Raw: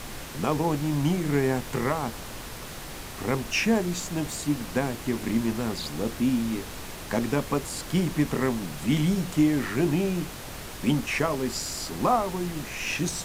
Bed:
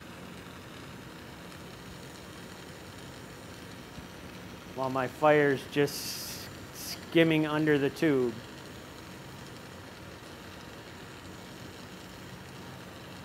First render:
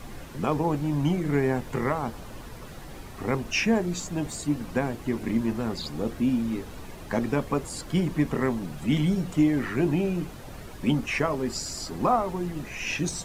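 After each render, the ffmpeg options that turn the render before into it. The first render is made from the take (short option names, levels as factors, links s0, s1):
-af "afftdn=nr=10:nf=-39"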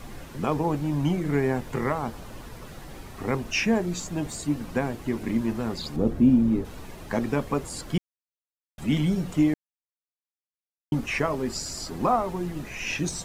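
-filter_complex "[0:a]asettb=1/sr,asplit=3[s0][s1][s2];[s0]atrim=end=5.964[s3];[s1]atrim=start=5.96:end=6.65,asetpts=PTS-STARTPTS,afade=t=in:d=0.004:c=qsin,afade=t=out:st=0.686:d=0.004:c=qsin,tiltshelf=f=870:g=7.5[s4];[s2]atrim=start=6.646[s5];[s3][s4]acrossfade=d=0.004:c1=hsin:c2=qsin[s6];[s6][s5]acrossfade=d=0.004:c1=qsin:c2=hsin,asplit=5[s7][s8][s9][s10][s11];[s7]atrim=end=7.98,asetpts=PTS-STARTPTS,afade=t=out:st=7.976:d=0.004:c=hsin[s12];[s8]atrim=start=7.98:end=8.78,asetpts=PTS-STARTPTS,volume=0[s13];[s9]atrim=start=8.78:end=9.54,asetpts=PTS-STARTPTS,afade=t=in:d=0.004:c=hsin,afade=t=out:st=0.756:d=0.004:c=hsin[s14];[s10]atrim=start=9.54:end=10.92,asetpts=PTS-STARTPTS,volume=0[s15];[s11]atrim=start=10.92,asetpts=PTS-STARTPTS,afade=t=in:d=0.004:c=hsin[s16];[s12][s13][s14][s15][s16]concat=n=5:v=0:a=1"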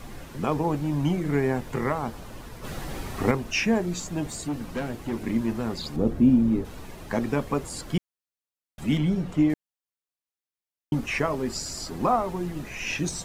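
-filter_complex "[0:a]asplit=3[s0][s1][s2];[s0]afade=t=out:st=2.63:d=0.02[s3];[s1]acontrast=89,afade=t=in:st=2.63:d=0.02,afade=t=out:st=3.3:d=0.02[s4];[s2]afade=t=in:st=3.3:d=0.02[s5];[s3][s4][s5]amix=inputs=3:normalize=0,asettb=1/sr,asplit=3[s6][s7][s8];[s6]atrim=end=4.464[s9];[s7]atrim=start=4.46:end=5.12,asetpts=PTS-STARTPTS,afade=t=in:d=0.004:c=qsin,afade=t=out:st=0.656:d=0.004:c=qsin,asoftclip=type=hard:threshold=0.0562[s10];[s8]atrim=start=5.116[s11];[s9][s10]acrossfade=d=0.004:c1=hsin:c2=qsin[s12];[s12][s11]acrossfade=d=0.004:c1=qsin:c2=hsin,asettb=1/sr,asplit=3[s13][s14][s15];[s13]atrim=end=8.974[s16];[s14]atrim=start=8.97:end=9.5,asetpts=PTS-STARTPTS,afade=t=in:d=0.004:c=qsin,afade=t=out:st=0.526:d=0.004:c=qsin,highshelf=f=4800:g=-11[s17];[s15]atrim=start=9.496[s18];[s16][s17]acrossfade=d=0.004:c1=hsin:c2=qsin[s19];[s19][s18]acrossfade=d=0.004:c1=qsin:c2=hsin"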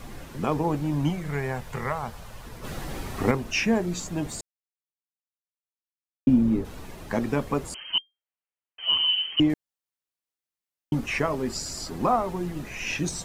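-filter_complex "[0:a]asettb=1/sr,asplit=3[s0][s1][s2];[s0]atrim=end=1.104[s3];[s1]atrim=start=1.1:end=2.45,asetpts=PTS-STARTPTS,afade=t=in:d=0.004:c=qsin,afade=t=out:st=1.346:d=0.004:c=qsin,equalizer=f=300:w=1.6:g=-14[s4];[s2]atrim=start=2.446[s5];[s3][s4]acrossfade=d=0.004:c1=hsin:c2=qsin[s6];[s6][s5]acrossfade=d=0.004:c1=qsin:c2=hsin,asettb=1/sr,asplit=3[s7][s8][s9];[s7]atrim=end=7.744[s10];[s8]atrim=start=7.74:end=9.4,asetpts=PTS-STARTPTS,afade=t=in:d=0.004:c=qsin,afade=t=out:st=1.656:d=0.004:c=qsin,lowpass=f=2700:t=q:w=0.5098,lowpass=f=2700:t=q:w=0.6013,lowpass=f=2700:t=q:w=0.9,lowpass=f=2700:t=q:w=2.563,afreqshift=-3200[s11];[s9]atrim=start=9.396[s12];[s10][s11]acrossfade=d=0.004:c1=hsin:c2=qsin[s13];[s13][s12]acrossfade=d=0.004:c1=qsin:c2=hsin,asplit=3[s14][s15][s16];[s14]atrim=end=4.41,asetpts=PTS-STARTPTS,afade=t=out:st=4.406:d=0.004:c=hsin[s17];[s15]atrim=start=4.41:end=6.27,asetpts=PTS-STARTPTS,volume=0[s18];[s16]atrim=start=6.27,asetpts=PTS-STARTPTS,afade=t=in:d=0.004:c=hsin[s19];[s17][s18][s19]concat=n=3:v=0:a=1"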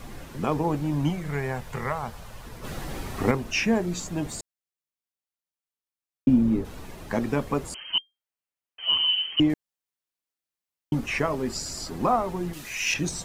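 -filter_complex "[0:a]asettb=1/sr,asplit=3[s0][s1][s2];[s0]atrim=end=12.534[s3];[s1]atrim=start=12.53:end=12.94,asetpts=PTS-STARTPTS,afade=t=in:d=0.004:c=qsin,afade=t=out:st=0.406:d=0.004:c=qsin,tiltshelf=f=1400:g=-9.5[s4];[s2]atrim=start=12.936[s5];[s3][s4]acrossfade=d=0.004:c1=hsin:c2=qsin[s6];[s6][s5]acrossfade=d=0.004:c1=qsin:c2=hsin"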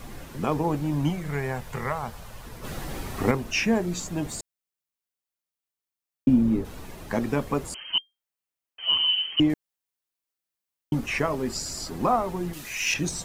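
-af "highshelf=f=11000:g=4.5"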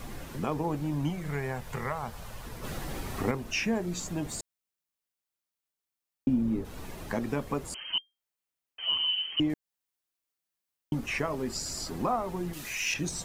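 -af "acompressor=threshold=0.0158:ratio=1.5"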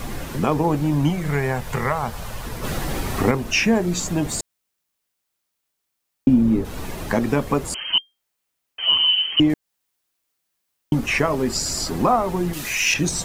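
-af "volume=3.55,alimiter=limit=0.708:level=0:latency=1"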